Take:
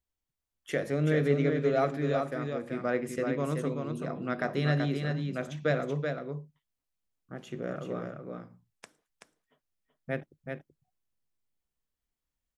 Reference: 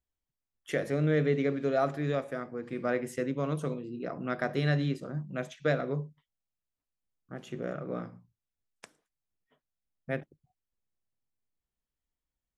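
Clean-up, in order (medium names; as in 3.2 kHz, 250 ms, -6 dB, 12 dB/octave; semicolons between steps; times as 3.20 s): inverse comb 380 ms -5 dB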